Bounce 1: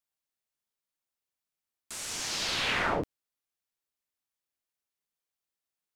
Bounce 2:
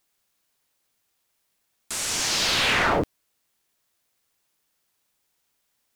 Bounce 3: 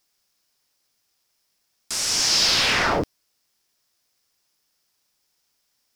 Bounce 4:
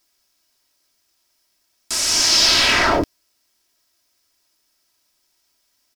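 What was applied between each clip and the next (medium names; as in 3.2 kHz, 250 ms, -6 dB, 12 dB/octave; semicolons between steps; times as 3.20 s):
word length cut 12-bit, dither triangular; waveshaping leveller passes 2; trim +2.5 dB
peaking EQ 5.2 kHz +10 dB 0.45 oct
comb 3.1 ms, depth 52%; trim +3.5 dB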